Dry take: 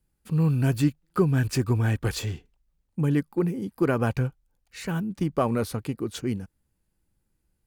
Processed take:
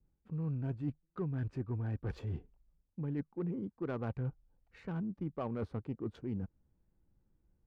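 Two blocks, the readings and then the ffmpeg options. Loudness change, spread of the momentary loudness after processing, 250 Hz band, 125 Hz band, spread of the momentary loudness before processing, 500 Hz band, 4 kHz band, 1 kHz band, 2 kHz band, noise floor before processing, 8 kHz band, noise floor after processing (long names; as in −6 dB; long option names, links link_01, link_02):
−13.0 dB, 5 LU, −12.5 dB, −12.5 dB, 11 LU, −14.0 dB, below −20 dB, −15.5 dB, −18.5 dB, −75 dBFS, below −35 dB, −79 dBFS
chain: -af "areverse,acompressor=threshold=-37dB:ratio=5,areverse,adynamicequalizer=threshold=0.00126:dfrequency=2000:dqfactor=0.83:tfrequency=2000:tqfactor=0.83:attack=5:release=100:ratio=0.375:range=2:mode=cutabove:tftype=bell,adynamicsmooth=sensitivity=4:basefreq=1200,volume=1dB"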